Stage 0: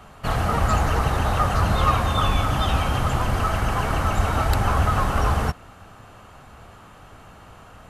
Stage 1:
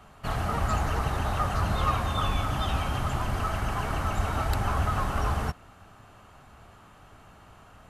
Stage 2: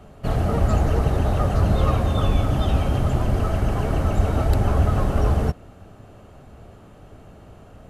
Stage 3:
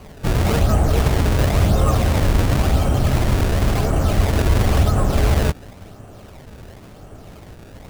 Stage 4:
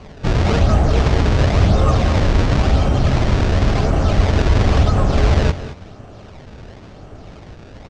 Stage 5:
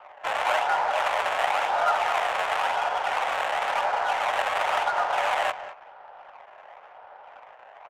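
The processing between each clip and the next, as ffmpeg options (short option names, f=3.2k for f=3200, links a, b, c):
-af "bandreject=f=500:w=12,volume=-6.5dB"
-af "lowshelf=f=730:t=q:w=1.5:g=9"
-filter_complex "[0:a]asplit=2[a][b];[b]alimiter=limit=-17.5dB:level=0:latency=1,volume=-1.5dB[c];[a][c]amix=inputs=2:normalize=0,acrusher=samples=24:mix=1:aa=0.000001:lfo=1:lforange=38.4:lforate=0.95"
-af "lowpass=f=6.1k:w=0.5412,lowpass=f=6.1k:w=1.3066,aecho=1:1:198|220:0.168|0.158,volume=2dB"
-af "highpass=f=500:t=q:w=0.5412,highpass=f=500:t=q:w=1.307,lowpass=f=3.1k:t=q:w=0.5176,lowpass=f=3.1k:t=q:w=0.7071,lowpass=f=3.1k:t=q:w=1.932,afreqshift=160,adynamicsmooth=sensitivity=5:basefreq=1.6k"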